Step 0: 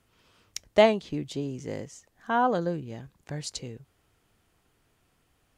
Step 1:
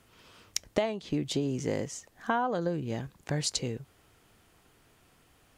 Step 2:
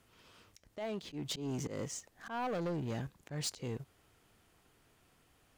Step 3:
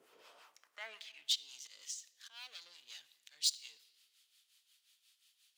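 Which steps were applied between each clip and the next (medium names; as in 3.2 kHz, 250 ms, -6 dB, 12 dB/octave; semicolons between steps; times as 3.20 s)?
bass shelf 120 Hz -4 dB; compression 16:1, threshold -32 dBFS, peak gain reduction 19 dB; trim +7 dB
waveshaping leveller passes 1; slow attack 182 ms; saturation -29 dBFS, distortion -10 dB; trim -3.5 dB
harmonic tremolo 5.6 Hz, depth 70%, crossover 760 Hz; high-pass sweep 410 Hz -> 3.7 kHz, 0.08–1.35 s; simulated room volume 2700 m³, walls mixed, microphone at 0.37 m; trim +2.5 dB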